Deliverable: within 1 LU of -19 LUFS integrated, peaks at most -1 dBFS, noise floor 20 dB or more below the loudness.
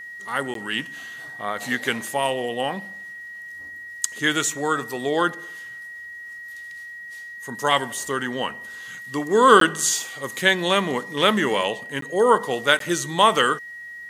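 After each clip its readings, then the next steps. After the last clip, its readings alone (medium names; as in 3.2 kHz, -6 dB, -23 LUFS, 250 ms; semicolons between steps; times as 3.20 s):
dropouts 4; longest dropout 13 ms; steady tone 1.9 kHz; tone level -35 dBFS; loudness -21.5 LUFS; peak level -1.0 dBFS; loudness target -19.0 LUFS
-> interpolate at 0.54/9.60/12.01/12.79 s, 13 ms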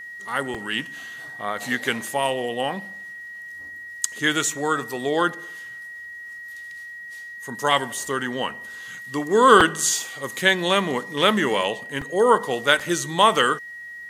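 dropouts 0; steady tone 1.9 kHz; tone level -35 dBFS
-> band-stop 1.9 kHz, Q 30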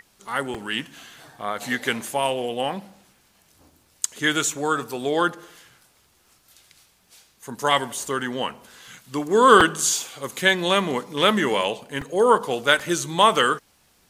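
steady tone not found; loudness -22.0 LUFS; peak level -1.5 dBFS; loudness target -19.0 LUFS
-> trim +3 dB; peak limiter -1 dBFS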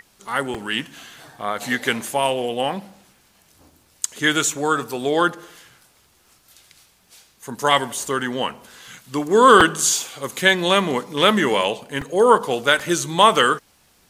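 loudness -19.0 LUFS; peak level -1.0 dBFS; noise floor -58 dBFS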